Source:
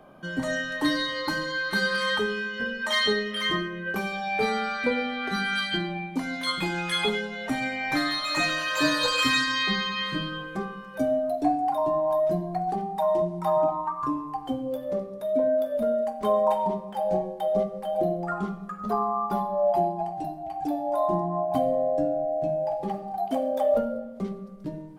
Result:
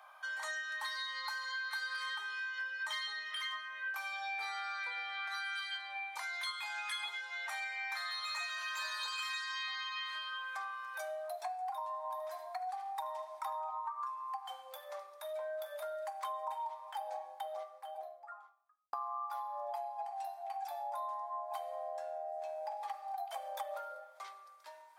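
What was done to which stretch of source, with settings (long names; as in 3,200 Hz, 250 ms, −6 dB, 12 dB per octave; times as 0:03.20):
0:11.87–0:13.79: single-tap delay 76 ms −12 dB
0:16.79–0:18.93: fade out and dull
whole clip: Butterworth high-pass 830 Hz 36 dB per octave; downward compressor 6 to 1, threshold −39 dBFS; notch filter 2,900 Hz, Q 11; level +1 dB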